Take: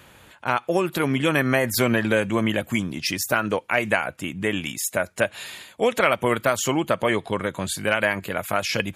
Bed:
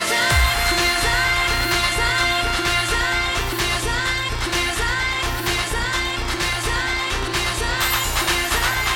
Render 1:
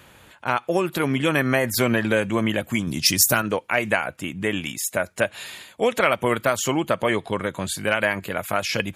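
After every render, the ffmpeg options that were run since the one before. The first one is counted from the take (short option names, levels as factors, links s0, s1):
-filter_complex "[0:a]asettb=1/sr,asplit=3[s0][s1][s2];[s0]atrim=end=2.874[s3];[s1]atrim=start=2.87:end=3.42,asetpts=PTS-STARTPTS,afade=t=in:d=0.004:c=qsin,afade=t=out:st=0.546:d=0.004:c=qsin,bass=f=250:g=7,treble=f=4000:g=12[s4];[s2]atrim=start=3.416[s5];[s3][s4]acrossfade=d=0.004:c1=hsin:c2=qsin[s6];[s6][s5]acrossfade=d=0.004:c1=qsin:c2=hsin"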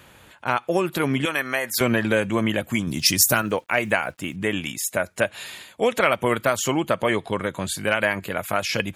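-filter_complex "[0:a]asettb=1/sr,asplit=3[s0][s1][s2];[s0]atrim=end=1.254[s3];[s1]atrim=start=1.25:end=1.81,asetpts=PTS-STARTPTS,afade=t=in:d=0.004:c=qsin,afade=t=out:st=0.556:d=0.004:c=qsin,highpass=f=990:p=1[s4];[s2]atrim=start=1.806[s5];[s3][s4]acrossfade=d=0.004:c1=hsin:c2=qsin[s6];[s6][s5]acrossfade=d=0.004:c1=qsin:c2=hsin,asettb=1/sr,asplit=3[s7][s8][s9];[s7]atrim=end=2.904[s10];[s8]atrim=start=2.9:end=4.36,asetpts=PTS-STARTPTS,afade=t=in:d=0.004:c=qsin,afade=t=out:st=1.456:d=0.004:c=qsin,acrusher=bits=8:mix=0:aa=0.5[s11];[s9]atrim=start=4.356[s12];[s10][s11]acrossfade=d=0.004:c1=hsin:c2=qsin[s13];[s13][s12]acrossfade=d=0.004:c1=qsin:c2=hsin"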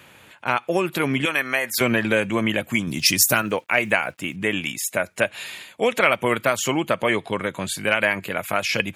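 -af "highpass=98,equalizer=f=2400:t=o:w=0.64:g=5"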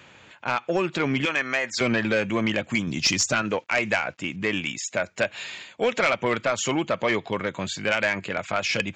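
-af "aresample=16000,asoftclip=type=tanh:threshold=0.224,aresample=44100,aeval=exprs='0.355*(cos(1*acos(clip(val(0)/0.355,-1,1)))-cos(1*PI/2))+0.01*(cos(2*acos(clip(val(0)/0.355,-1,1)))-cos(2*PI/2))+0.0141*(cos(3*acos(clip(val(0)/0.355,-1,1)))-cos(3*PI/2))':c=same"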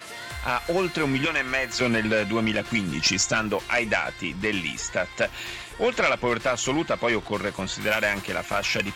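-filter_complex "[1:a]volume=0.112[s0];[0:a][s0]amix=inputs=2:normalize=0"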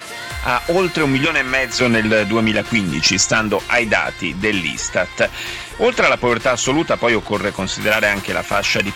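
-af "volume=2.51,alimiter=limit=0.708:level=0:latency=1"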